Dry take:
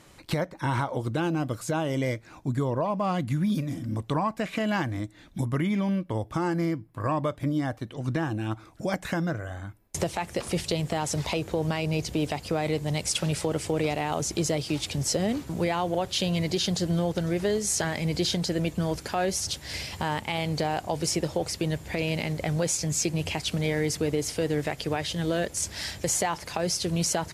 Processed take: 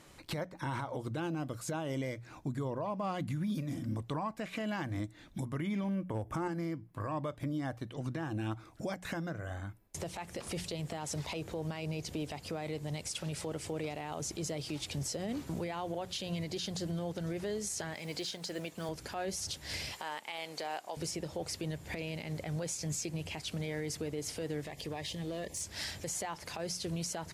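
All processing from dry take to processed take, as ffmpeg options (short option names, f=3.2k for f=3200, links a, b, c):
-filter_complex "[0:a]asettb=1/sr,asplit=3[a][b][c];[a]atrim=end=5.844[d];[b]atrim=start=5.84:end=6.48,asetpts=PTS-STARTPTS,afade=t=in:d=0.004:c=qsin,afade=t=out:st=0.636:d=0.004:c=qsin,equalizer=f=4.1k:t=o:w=0.65:g=-15,asoftclip=type=hard:threshold=-20dB,acontrast=72[e];[c]atrim=start=6.476[f];[d][e]acrossfade=d=0.004:c1=hsin:c2=qsin[g];[g][f]acrossfade=d=0.004:c1=qsin:c2=hsin,asettb=1/sr,asplit=3[h][i][j];[h]atrim=end=17.944[k];[i]atrim=start=17.94:end=18.89,asetpts=PTS-STARTPTS,afade=t=in:d=0.004:c=qsin,afade=t=out:st=0.946:d=0.004:c=qsin,highpass=f=530:p=1,acrusher=bits=7:mode=log:mix=0:aa=0.000001[l];[j]atrim=start=18.886[m];[k][l]acrossfade=d=0.004:c1=hsin:c2=qsin[n];[n][m]acrossfade=d=0.004:c1=qsin:c2=hsin,asettb=1/sr,asplit=3[o][p][q];[o]atrim=end=19.924[r];[p]atrim=start=19.92:end=20.97,asetpts=PTS-STARTPTS,afade=t=in:d=0.004:c=qsin,afade=t=out:st=1.046:d=0.004:c=qsin,highpass=300,lowshelf=f=420:g=-10.5[s];[q]atrim=start=20.966[t];[r][s]acrossfade=d=0.004:c1=hsin:c2=qsin[u];[u][t]acrossfade=d=0.004:c1=qsin:c2=hsin,asettb=1/sr,asplit=3[v][w][x];[v]atrim=end=24.654[y];[w]atrim=start=24.65:end=25.61,asetpts=PTS-STARTPTS,afade=t=in:d=0.004:c=qsin,afade=t=out:st=0.956:d=0.004:c=qsin,asuperstop=centerf=1400:order=12:qfactor=2.7,acompressor=threshold=-34dB:ratio=2.5:attack=3.2:release=140:knee=1:detection=peak,asoftclip=type=hard:threshold=-29dB[z];[x]atrim=start=25.606[aa];[y][z]acrossfade=d=0.004:c1=hsin:c2=qsin[ab];[ab][aa]acrossfade=d=0.004:c1=qsin:c2=hsin,bandreject=f=60:t=h:w=6,bandreject=f=120:t=h:w=6,bandreject=f=180:t=h:w=6,alimiter=level_in=0.5dB:limit=-24dB:level=0:latency=1:release=204,volume=-0.5dB,volume=-3.5dB"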